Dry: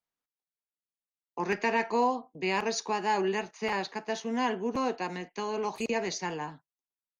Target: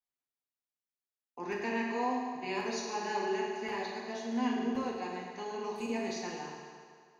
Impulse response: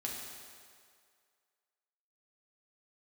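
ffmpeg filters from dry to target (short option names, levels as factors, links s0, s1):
-filter_complex "[1:a]atrim=start_sample=2205[s0];[0:a][s0]afir=irnorm=-1:irlink=0,volume=0.447"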